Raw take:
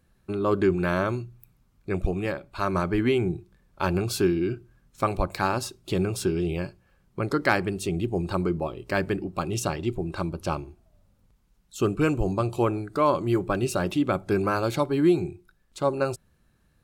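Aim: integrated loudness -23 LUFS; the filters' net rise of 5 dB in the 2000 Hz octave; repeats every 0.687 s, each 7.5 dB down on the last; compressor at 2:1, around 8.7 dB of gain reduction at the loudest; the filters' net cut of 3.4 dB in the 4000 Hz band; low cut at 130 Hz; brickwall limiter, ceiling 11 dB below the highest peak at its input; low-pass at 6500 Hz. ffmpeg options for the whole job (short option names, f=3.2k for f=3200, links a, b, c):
-af "highpass=130,lowpass=6.5k,equalizer=f=2k:t=o:g=8.5,equalizer=f=4k:t=o:g=-7,acompressor=threshold=-31dB:ratio=2,alimiter=limit=-22.5dB:level=0:latency=1,aecho=1:1:687|1374|2061|2748|3435:0.422|0.177|0.0744|0.0312|0.0131,volume=11.5dB"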